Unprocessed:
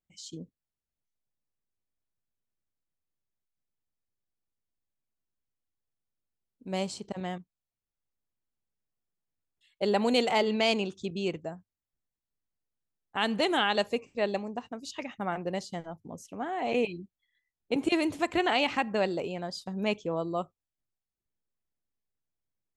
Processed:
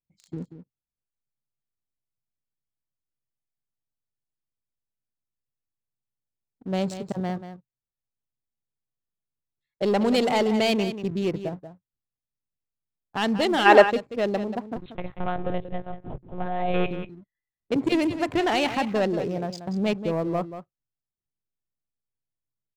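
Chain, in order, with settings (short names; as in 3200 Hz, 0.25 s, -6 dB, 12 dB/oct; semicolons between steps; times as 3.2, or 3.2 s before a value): Wiener smoothing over 15 samples; sample leveller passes 2; 14.76–16.91 monotone LPC vocoder at 8 kHz 180 Hz; low shelf 430 Hz +3 dB; echo 0.185 s -11 dB; 13.66–13.9 spectral gain 260–2800 Hz +12 dB; bell 130 Hz +7.5 dB 0.36 oct; gain -3 dB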